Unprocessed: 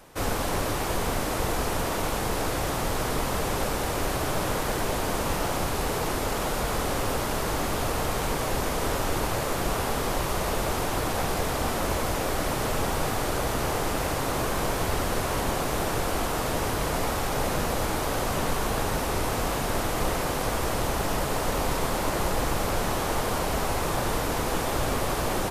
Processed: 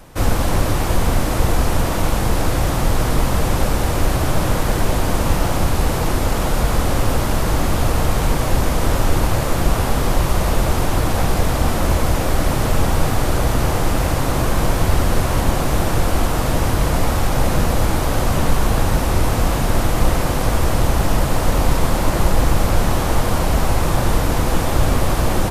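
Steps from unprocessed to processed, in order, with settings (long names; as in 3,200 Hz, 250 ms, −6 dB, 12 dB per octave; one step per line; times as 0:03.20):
low-shelf EQ 200 Hz +10.5 dB
notch filter 420 Hz, Q 12
level +5 dB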